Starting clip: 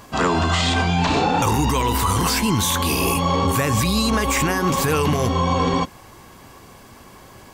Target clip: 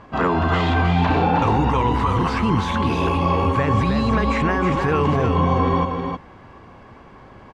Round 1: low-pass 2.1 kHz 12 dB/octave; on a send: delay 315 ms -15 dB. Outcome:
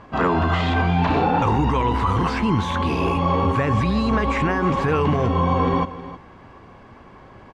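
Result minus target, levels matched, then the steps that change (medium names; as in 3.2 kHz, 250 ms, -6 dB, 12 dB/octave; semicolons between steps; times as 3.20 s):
echo-to-direct -9.5 dB
change: delay 315 ms -5.5 dB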